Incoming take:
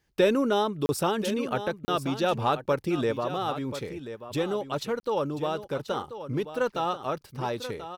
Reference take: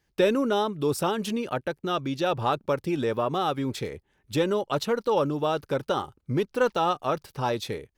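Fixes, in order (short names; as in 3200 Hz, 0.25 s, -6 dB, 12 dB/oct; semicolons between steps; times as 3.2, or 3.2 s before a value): interpolate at 0.86/1.85/5, 30 ms; inverse comb 1.035 s -11.5 dB; gain 0 dB, from 3.12 s +4 dB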